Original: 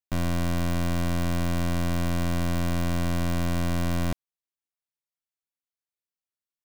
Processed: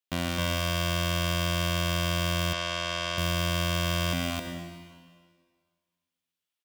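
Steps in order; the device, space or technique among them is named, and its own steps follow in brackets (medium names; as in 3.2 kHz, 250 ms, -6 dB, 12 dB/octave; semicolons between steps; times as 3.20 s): stadium PA (high-pass 170 Hz 6 dB/octave; peaking EQ 3.1 kHz +8 dB 0.78 oct; loudspeakers at several distances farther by 59 m -10 dB, 91 m -1 dB; reverberation RT60 1.8 s, pre-delay 51 ms, DRR 4.5 dB); 2.53–3.18 s: three-band isolator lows -12 dB, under 420 Hz, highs -24 dB, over 7.7 kHz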